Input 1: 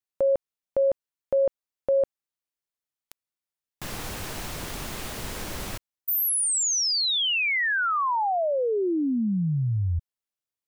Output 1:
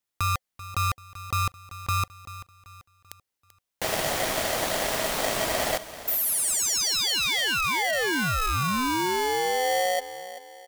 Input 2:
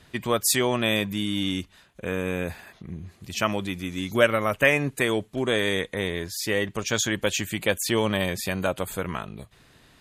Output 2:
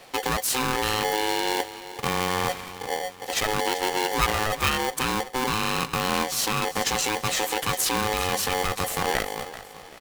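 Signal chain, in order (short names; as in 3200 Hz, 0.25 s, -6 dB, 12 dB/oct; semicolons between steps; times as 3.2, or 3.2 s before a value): dynamic EQ 110 Hz, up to +5 dB, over -43 dBFS, Q 2.1; in parallel at +3 dB: negative-ratio compressor -29 dBFS, ratio -0.5; on the sum: feedback echo 0.387 s, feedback 40%, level -14.5 dB; polarity switched at an audio rate 640 Hz; gain -5 dB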